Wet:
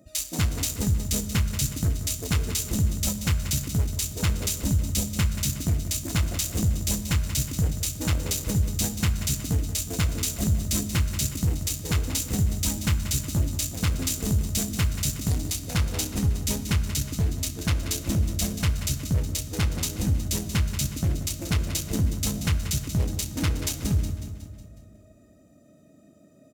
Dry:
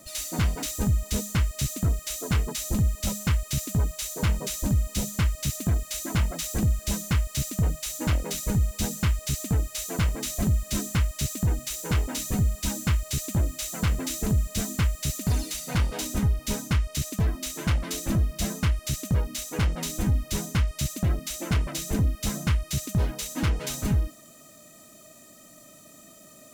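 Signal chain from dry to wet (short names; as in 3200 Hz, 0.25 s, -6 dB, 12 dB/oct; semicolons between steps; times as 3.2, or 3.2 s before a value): Wiener smoothing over 41 samples; HPF 42 Hz; high shelf 2800 Hz +9.5 dB; feedback echo 0.183 s, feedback 53%, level -10.5 dB; reverb RT60 2.0 s, pre-delay 5 ms, DRR 10 dB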